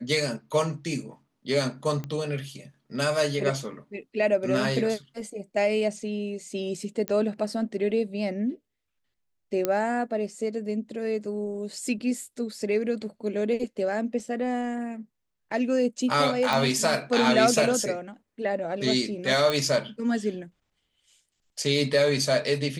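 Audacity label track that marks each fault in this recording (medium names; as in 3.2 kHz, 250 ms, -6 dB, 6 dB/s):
2.040000	2.040000	pop -21 dBFS
7.080000	7.080000	pop -14 dBFS
9.650000	9.650000	pop -10 dBFS
16.530000	16.530000	pop
19.500000	19.500000	pop -12 dBFS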